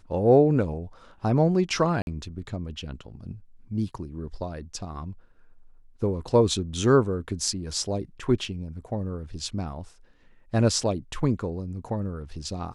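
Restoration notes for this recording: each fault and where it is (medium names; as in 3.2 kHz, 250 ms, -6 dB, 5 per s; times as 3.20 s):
2.02–2.07 s: dropout 51 ms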